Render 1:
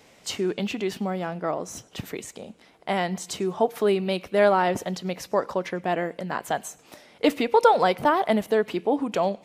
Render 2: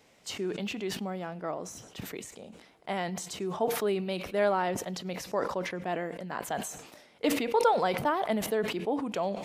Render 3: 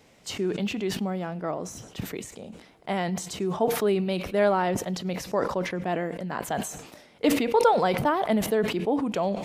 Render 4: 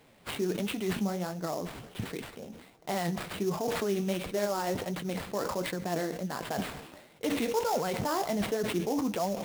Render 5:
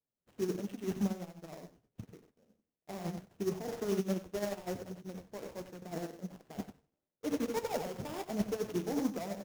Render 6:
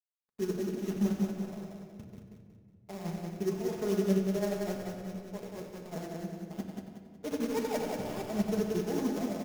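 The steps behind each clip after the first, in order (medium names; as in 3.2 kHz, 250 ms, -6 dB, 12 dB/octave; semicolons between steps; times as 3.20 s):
decay stretcher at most 64 dB/s; trim -7.5 dB
bass shelf 270 Hz +6.5 dB; trim +3 dB
peak limiter -19.5 dBFS, peak gain reduction 10.5 dB; flange 1.4 Hz, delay 5.7 ms, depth 9.5 ms, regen +47%; sample-rate reducer 6.1 kHz, jitter 20%; trim +1.5 dB
median filter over 41 samples; delay 94 ms -5.5 dB; upward expansion 2.5:1, over -50 dBFS
crossover distortion -55.5 dBFS; on a send: feedback delay 184 ms, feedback 39%, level -4 dB; on the sum: simulated room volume 3800 m³, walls mixed, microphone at 1.4 m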